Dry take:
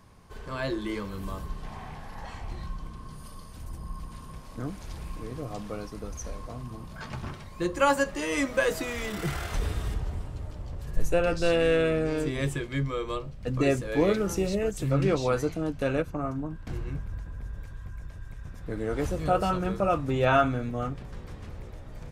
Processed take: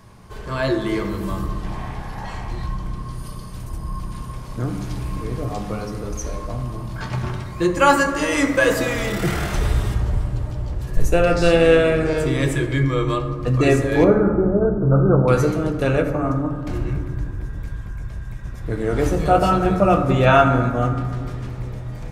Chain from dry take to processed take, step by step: 14.04–15.28 s: brick-wall FIR low-pass 1.6 kHz; reverberation RT60 1.9 s, pre-delay 4 ms, DRR 4 dB; trim +7.5 dB

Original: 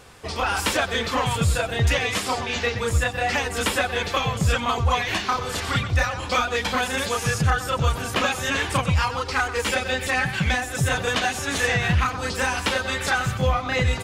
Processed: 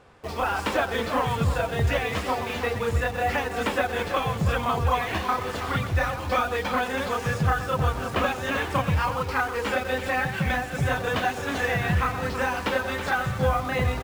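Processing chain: low-pass 1.1 kHz 6 dB/octave; bass shelf 180 Hz -5 dB; hum notches 60/120/180/240/300/360/420/480 Hz; in parallel at -6 dB: bit crusher 6-bit; on the sum: delay 325 ms -10.5 dB; trim -2 dB

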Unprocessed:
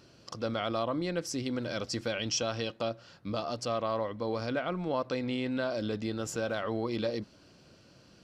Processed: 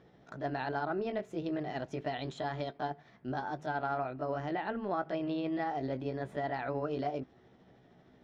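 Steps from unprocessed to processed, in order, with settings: rotating-head pitch shifter +4 st; distance through air 380 m

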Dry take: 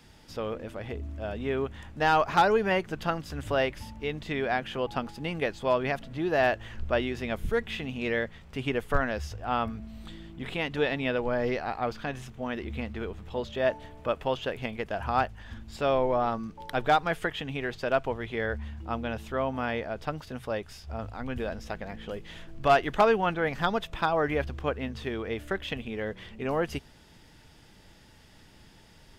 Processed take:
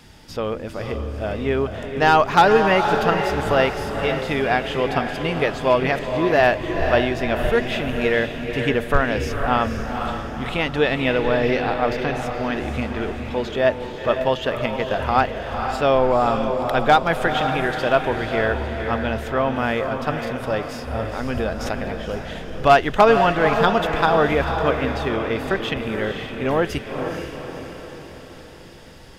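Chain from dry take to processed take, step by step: vibrato 5.2 Hz 10 cents; echo that smears into a reverb 492 ms, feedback 52%, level -6 dB; 21.05–21.92 s: swell ahead of each attack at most 45 dB/s; trim +8 dB

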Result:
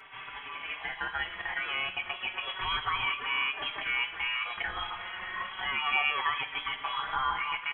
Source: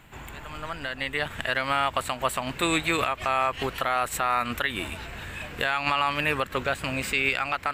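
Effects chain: steep high-pass 230 Hz 36 dB/octave; bass shelf 310 Hz -5.5 dB; in parallel at +2.5 dB: compression, threshold -33 dBFS, peak gain reduction 12.5 dB; on the sum: peak limiter -12.5 dBFS, peak gain reduction 6.5 dB; reverse; upward compressor, threshold -31 dBFS; reverse; reverberation RT60 0.70 s, pre-delay 3 ms, DRR 2.5 dB; frequency inversion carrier 3.6 kHz; endless flanger 4.7 ms +0.31 Hz; trim -6 dB

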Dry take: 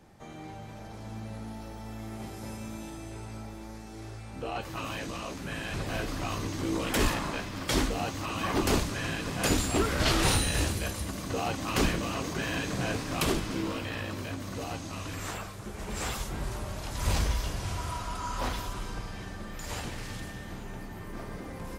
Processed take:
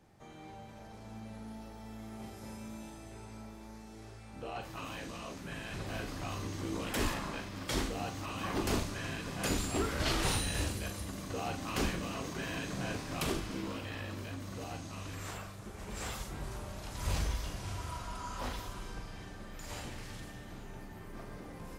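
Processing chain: flutter echo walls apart 7 m, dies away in 0.26 s; trim -7 dB

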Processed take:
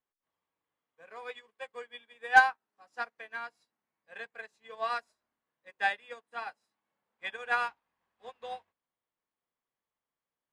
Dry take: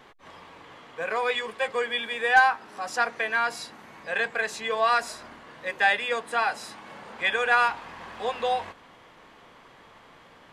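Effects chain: upward expansion 2.5:1, over -42 dBFS

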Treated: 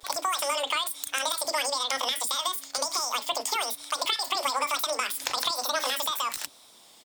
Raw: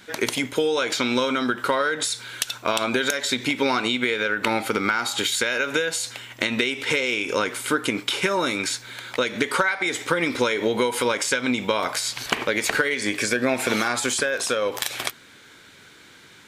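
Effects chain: vibrato 0.47 Hz 65 cents; speed mistake 33 rpm record played at 78 rpm; bands offset in time highs, lows 30 ms, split 360 Hz; trim -5 dB

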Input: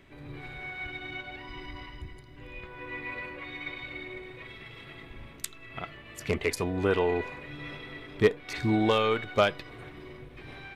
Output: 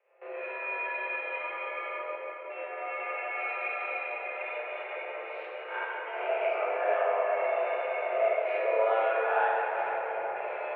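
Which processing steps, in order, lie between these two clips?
reverse spectral sustain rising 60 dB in 0.56 s; gate with hold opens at -34 dBFS; compression 3:1, threshold -36 dBFS, peak gain reduction 15.5 dB; mistuned SSB +230 Hz 200–2300 Hz; tape echo 441 ms, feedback 67%, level -4.5 dB, low-pass 1.6 kHz; reverberation RT60 3.4 s, pre-delay 6 ms, DRR -5 dB; endings held to a fixed fall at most 520 dB/s; trim +1.5 dB

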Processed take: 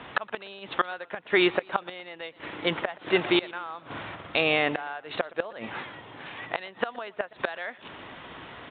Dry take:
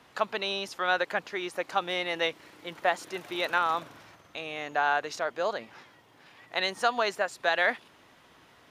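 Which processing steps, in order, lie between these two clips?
inverted gate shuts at -20 dBFS, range -25 dB; resampled via 8 kHz; loudness maximiser +23.5 dB; modulated delay 121 ms, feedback 35%, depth 90 cents, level -22 dB; trim -9 dB

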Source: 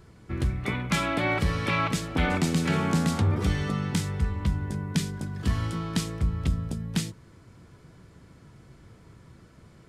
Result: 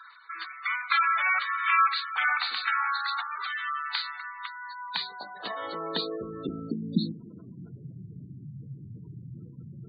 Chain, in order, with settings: knee-point frequency compression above 3.5 kHz 4:1; in parallel at -3 dB: compression, threshold -36 dBFS, peak gain reduction 16 dB; on the sum: high-pass sweep 1.3 kHz -> 130 Hz, 4.46–7.88 s; spectral gate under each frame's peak -15 dB strong; reverse; upward compressor, threshold -39 dBFS; reverse; de-hum 52.87 Hz, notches 13

